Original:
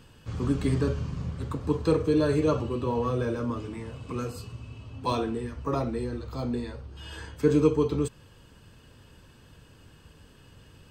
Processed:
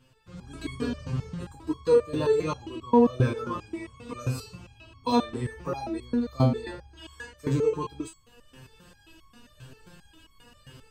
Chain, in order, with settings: level rider gain up to 13 dB; resonator arpeggio 7.5 Hz 130–1100 Hz; trim +3.5 dB

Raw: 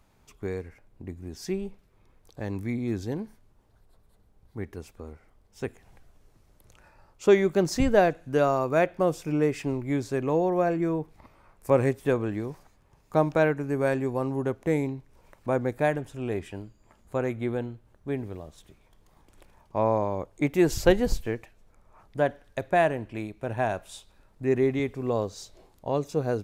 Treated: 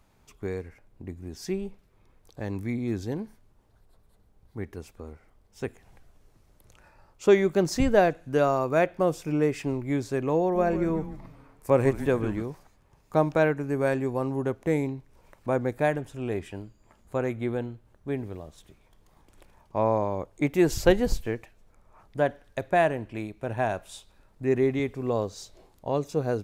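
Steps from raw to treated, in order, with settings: 10.40–12.42 s: frequency-shifting echo 147 ms, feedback 41%, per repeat -150 Hz, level -11 dB

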